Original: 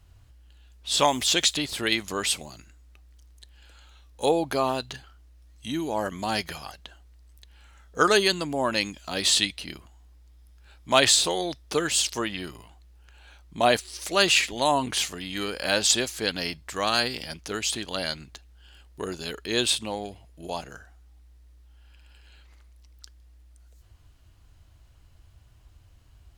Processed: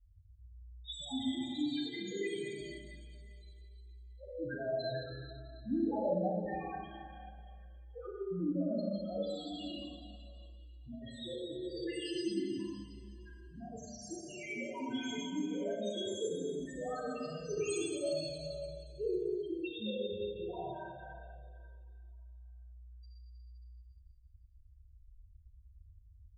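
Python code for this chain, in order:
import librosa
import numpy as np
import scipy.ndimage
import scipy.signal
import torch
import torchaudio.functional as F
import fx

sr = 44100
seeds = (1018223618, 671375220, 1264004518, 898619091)

y = fx.noise_reduce_blind(x, sr, reduce_db=8)
y = fx.over_compress(y, sr, threshold_db=-28.0, ratio=-0.5)
y = fx.spec_topn(y, sr, count=1)
y = fx.rev_schroeder(y, sr, rt60_s=2.3, comb_ms=30, drr_db=-5.5)
y = fx.comb_cascade(y, sr, direction='falling', hz=0.72)
y = F.gain(torch.from_numpy(y), 2.5).numpy()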